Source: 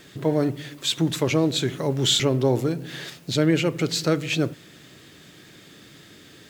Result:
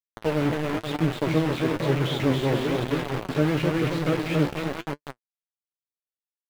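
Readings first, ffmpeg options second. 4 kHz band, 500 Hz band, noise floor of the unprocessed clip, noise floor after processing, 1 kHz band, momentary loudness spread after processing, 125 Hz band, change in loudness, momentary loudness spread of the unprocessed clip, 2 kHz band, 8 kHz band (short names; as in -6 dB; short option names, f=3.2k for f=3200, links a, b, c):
-9.5 dB, -1.5 dB, -49 dBFS, under -85 dBFS, +3.0 dB, 7 LU, 0.0 dB, -2.0 dB, 8 LU, +0.5 dB, -14.0 dB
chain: -filter_complex "[0:a]aemphasis=mode=reproduction:type=75fm,aecho=1:1:270|486|658.8|797|907.6:0.631|0.398|0.251|0.158|0.1,acrusher=bits=3:mix=0:aa=0.000001,flanger=delay=6.7:depth=7.1:regen=47:speed=1:shape=sinusoidal,acrossover=split=3300[a][b];[b]acompressor=threshold=-46dB:ratio=4:attack=1:release=60[c];[a][c]amix=inputs=2:normalize=0"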